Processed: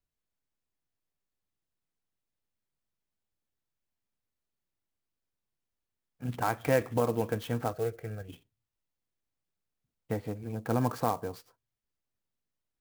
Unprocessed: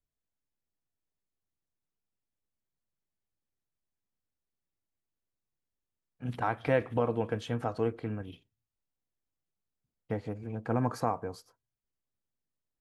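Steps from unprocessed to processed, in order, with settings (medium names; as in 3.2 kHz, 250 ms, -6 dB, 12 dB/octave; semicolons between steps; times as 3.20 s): 7.73–8.29 s: static phaser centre 1 kHz, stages 6; sampling jitter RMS 0.029 ms; trim +1 dB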